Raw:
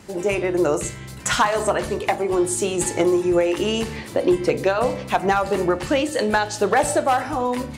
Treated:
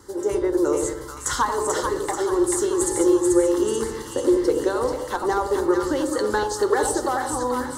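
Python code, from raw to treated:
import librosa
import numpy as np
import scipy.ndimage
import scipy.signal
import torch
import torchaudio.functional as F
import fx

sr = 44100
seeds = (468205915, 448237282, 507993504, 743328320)

y = fx.dynamic_eq(x, sr, hz=1400.0, q=2.3, threshold_db=-34.0, ratio=4.0, max_db=-5)
y = fx.fixed_phaser(y, sr, hz=670.0, stages=6)
y = fx.echo_split(y, sr, split_hz=980.0, low_ms=88, high_ms=437, feedback_pct=52, wet_db=-4.0)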